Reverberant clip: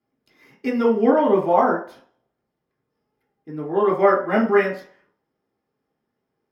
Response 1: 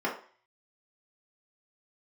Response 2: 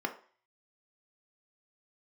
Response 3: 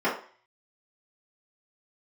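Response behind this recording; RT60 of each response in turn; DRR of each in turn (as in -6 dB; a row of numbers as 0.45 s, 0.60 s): 1; 0.45 s, 0.45 s, 0.45 s; -5.0 dB, 3.5 dB, -11.0 dB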